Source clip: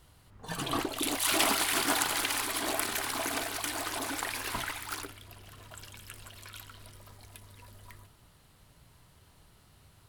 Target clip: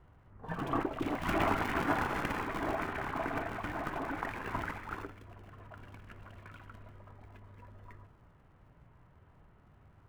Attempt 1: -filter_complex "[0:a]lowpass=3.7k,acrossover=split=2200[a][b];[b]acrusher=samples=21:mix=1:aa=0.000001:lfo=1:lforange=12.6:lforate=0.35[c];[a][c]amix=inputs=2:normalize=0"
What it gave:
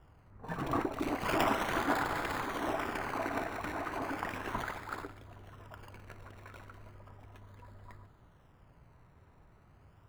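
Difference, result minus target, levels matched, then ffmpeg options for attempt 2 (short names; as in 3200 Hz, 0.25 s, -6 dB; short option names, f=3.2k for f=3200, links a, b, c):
decimation with a swept rate: distortion -10 dB
-filter_complex "[0:a]lowpass=3.7k,acrossover=split=2200[a][b];[b]acrusher=samples=80:mix=1:aa=0.000001:lfo=1:lforange=48:lforate=0.35[c];[a][c]amix=inputs=2:normalize=0"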